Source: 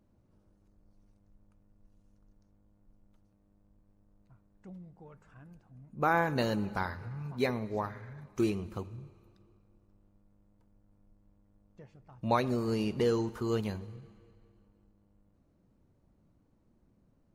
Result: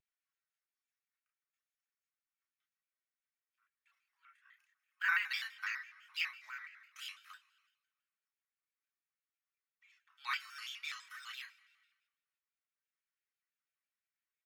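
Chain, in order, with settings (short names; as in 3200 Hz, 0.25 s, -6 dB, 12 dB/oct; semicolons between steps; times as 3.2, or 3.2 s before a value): tempo 1.2×; gate -59 dBFS, range -9 dB; Bessel high-pass 2500 Hz, order 8; reverb RT60 0.15 s, pre-delay 3 ms, DRR 0 dB; pitch shift +2 st; chorus voices 2, 0.31 Hz, delay 30 ms, depth 4.5 ms; shaped vibrato square 6 Hz, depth 160 cents; gain +1 dB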